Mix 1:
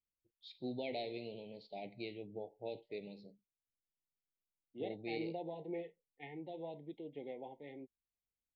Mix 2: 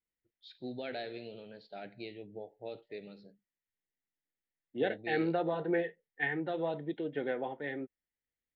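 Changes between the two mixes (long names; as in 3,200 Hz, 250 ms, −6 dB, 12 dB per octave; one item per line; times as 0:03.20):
second voice +10.5 dB
master: remove elliptic band-stop filter 930–2,100 Hz, stop band 40 dB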